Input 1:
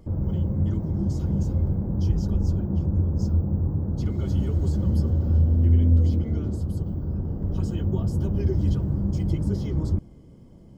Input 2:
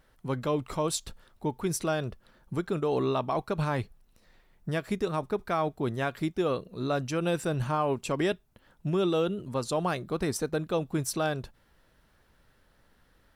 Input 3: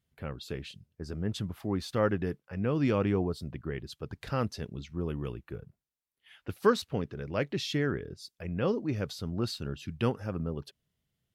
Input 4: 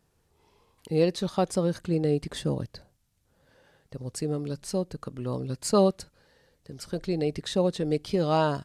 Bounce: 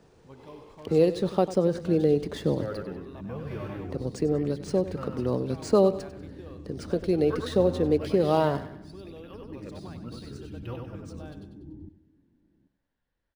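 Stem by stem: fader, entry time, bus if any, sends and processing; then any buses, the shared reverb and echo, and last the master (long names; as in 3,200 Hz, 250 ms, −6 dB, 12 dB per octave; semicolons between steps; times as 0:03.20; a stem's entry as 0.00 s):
−9.0 dB, 1.90 s, no send, echo send −13.5 dB, formant resonators in series u
−19.0 dB, 0.00 s, no send, echo send −11 dB, notch filter 1,300 Hz, Q 7
−7.5 dB, 0.65 s, no send, echo send −4 dB, through-zero flanger with one copy inverted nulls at 0.29 Hz, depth 5.6 ms
−2.5 dB, 0.00 s, no send, echo send −15 dB, parametric band 420 Hz +7 dB 1.7 octaves; multiband upward and downward compressor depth 40%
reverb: not used
echo: repeating echo 96 ms, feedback 45%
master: low-pass filter 9,800 Hz; linearly interpolated sample-rate reduction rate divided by 3×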